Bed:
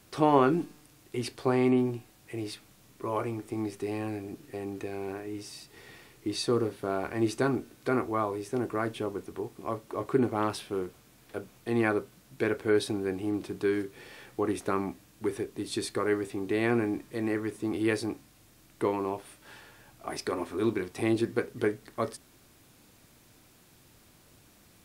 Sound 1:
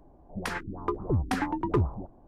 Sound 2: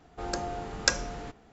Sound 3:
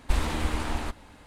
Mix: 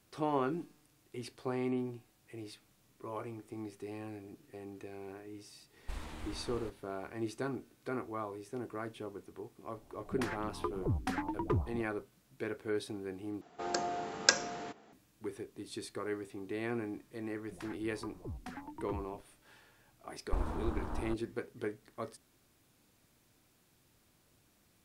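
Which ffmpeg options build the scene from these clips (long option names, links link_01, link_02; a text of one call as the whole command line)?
ffmpeg -i bed.wav -i cue0.wav -i cue1.wav -i cue2.wav -filter_complex "[3:a]asplit=2[link_01][link_02];[1:a]asplit=2[link_03][link_04];[0:a]volume=-10.5dB[link_05];[2:a]highpass=220[link_06];[link_04]afreqshift=-15[link_07];[link_02]afwtdn=0.0224[link_08];[link_05]asplit=2[link_09][link_10];[link_09]atrim=end=13.414[link_11];[link_06]atrim=end=1.52,asetpts=PTS-STARTPTS,volume=-1dB[link_12];[link_10]atrim=start=14.926[link_13];[link_01]atrim=end=1.26,asetpts=PTS-STARTPTS,volume=-17dB,afade=type=in:duration=0.004:curve=hsin,afade=type=out:start_time=1.256:duration=0.004:curve=hsin,adelay=5790[link_14];[link_03]atrim=end=2.27,asetpts=PTS-STARTPTS,volume=-7dB,afade=type=in:duration=0.004:curve=hsin,afade=type=out:start_time=2.266:duration=0.004:curve=hsin,adelay=9760[link_15];[link_07]atrim=end=2.27,asetpts=PTS-STARTPTS,volume=-17dB,afade=type=in:duration=0.004:curve=hsin,afade=type=out:start_time=2.266:duration=0.004:curve=hsin,adelay=17150[link_16];[link_08]atrim=end=1.26,asetpts=PTS-STARTPTS,volume=-8.5dB,afade=type=in:duration=0.004:curve=hsin,afade=type=out:start_time=1.256:duration=0.004:curve=hsin,adelay=20230[link_17];[link_11][link_12]acrossfade=duration=0.004:curve1=hsin:curve2=hsin[link_18];[link_18][link_13]acrossfade=duration=0.004:curve1=hsin:curve2=hsin[link_19];[link_19][link_14][link_15][link_16][link_17]amix=inputs=5:normalize=0" out.wav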